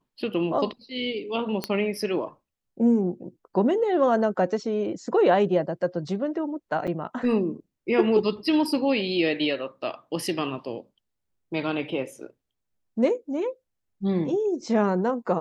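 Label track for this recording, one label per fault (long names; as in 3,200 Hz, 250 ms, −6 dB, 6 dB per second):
1.640000	1.640000	click −12 dBFS
6.870000	6.880000	drop-out 6.7 ms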